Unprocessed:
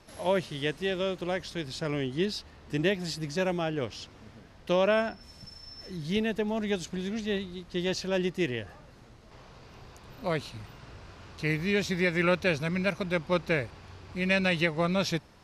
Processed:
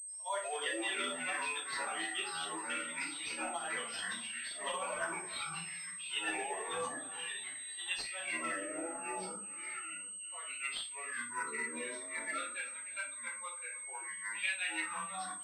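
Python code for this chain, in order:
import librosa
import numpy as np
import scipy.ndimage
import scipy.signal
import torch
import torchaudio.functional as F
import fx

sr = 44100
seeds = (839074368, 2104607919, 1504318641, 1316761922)

y = fx.bin_expand(x, sr, power=2.0)
y = fx.doppler_pass(y, sr, speed_mps=6, closest_m=5.1, pass_at_s=3.34)
y = scipy.signal.sosfilt(scipy.signal.butter(4, 970.0, 'highpass', fs=sr, output='sos'), y)
y = fx.over_compress(y, sr, threshold_db=-52.0, ratio=-1.0)
y = fx.rotary_switch(y, sr, hz=5.5, then_hz=0.6, switch_at_s=3.78)
y = y + 10.0 ** (-17.5 / 20.0) * np.pad(y, (int(308 * sr / 1000.0), 0))[:len(y)]
y = fx.echo_pitch(y, sr, ms=95, semitones=-5, count=3, db_per_echo=-3.0)
y = fx.room_shoebox(y, sr, seeds[0], volume_m3=250.0, walls='furnished', distance_m=4.4)
y = fx.pwm(y, sr, carrier_hz=8300.0)
y = F.gain(torch.from_numpy(y), 9.0).numpy()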